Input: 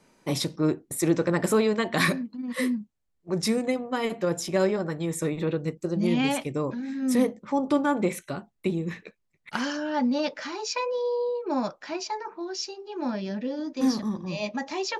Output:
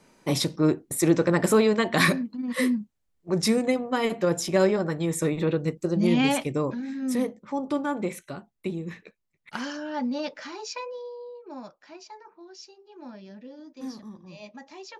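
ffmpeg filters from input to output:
ffmpeg -i in.wav -af "volume=2.5dB,afade=type=out:start_time=6.51:duration=0.69:silence=0.473151,afade=type=out:start_time=10.6:duration=0.54:silence=0.354813" out.wav

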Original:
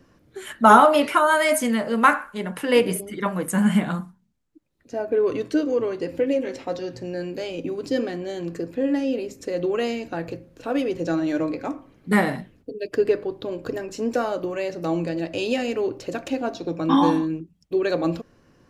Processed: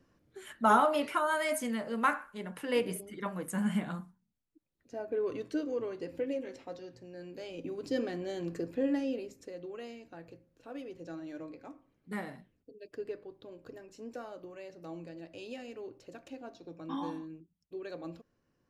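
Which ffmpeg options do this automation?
ffmpeg -i in.wav -af "volume=-0.5dB,afade=type=out:start_time=6.19:duration=0.9:silence=0.473151,afade=type=in:start_time=7.09:duration=1.14:silence=0.266073,afade=type=out:start_time=8.8:duration=0.8:silence=0.237137" out.wav

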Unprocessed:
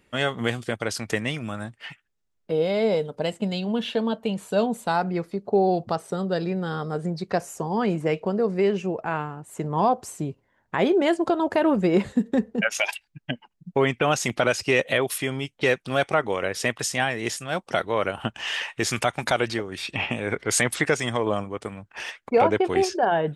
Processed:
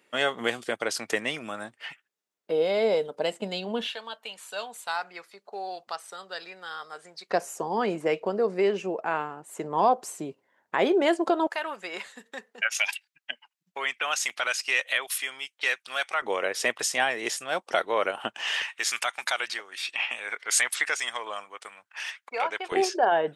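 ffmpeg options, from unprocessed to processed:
ffmpeg -i in.wav -af "asetnsamples=nb_out_samples=441:pad=0,asendcmd='3.87 highpass f 1300;7.3 highpass f 340;11.47 highpass f 1300;16.22 highpass f 420;18.62 highpass f 1200;22.72 highpass f 390',highpass=350" out.wav

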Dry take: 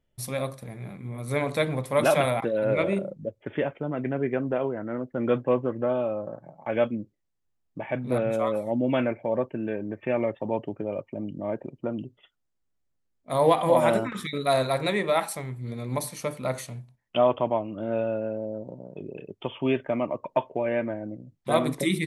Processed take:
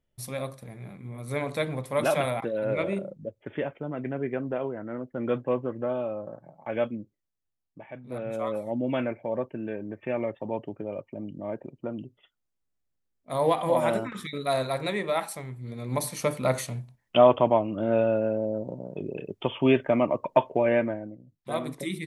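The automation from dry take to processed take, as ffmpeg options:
ffmpeg -i in.wav -af "volume=14.5dB,afade=type=out:start_time=6.84:duration=1.19:silence=0.298538,afade=type=in:start_time=8.03:duration=0.49:silence=0.298538,afade=type=in:start_time=15.74:duration=0.52:silence=0.421697,afade=type=out:start_time=20.73:duration=0.42:silence=0.266073" out.wav

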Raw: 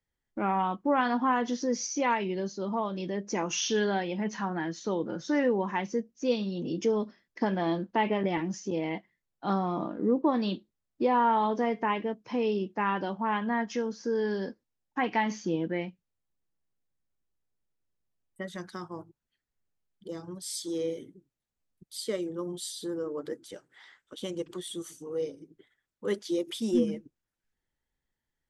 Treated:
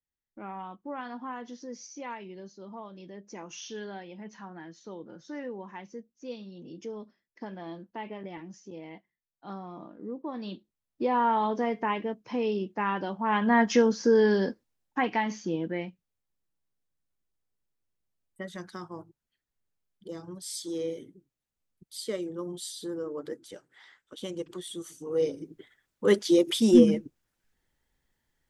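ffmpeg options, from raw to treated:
ffmpeg -i in.wav -af "volume=19.5dB,afade=type=in:start_time=10.24:duration=1.01:silence=0.266073,afade=type=in:start_time=13.21:duration=0.54:silence=0.298538,afade=type=out:start_time=13.75:duration=1.47:silence=0.281838,afade=type=in:start_time=24.93:duration=0.48:silence=0.334965" out.wav

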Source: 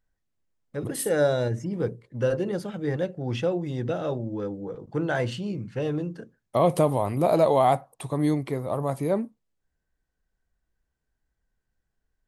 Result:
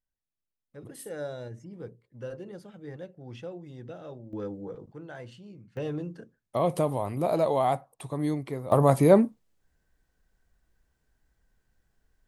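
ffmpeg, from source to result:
ffmpeg -i in.wav -af "asetnsamples=nb_out_samples=441:pad=0,asendcmd='4.33 volume volume -4dB;4.92 volume volume -16.5dB;5.77 volume volume -5dB;8.72 volume volume 7.5dB',volume=-14dB" out.wav

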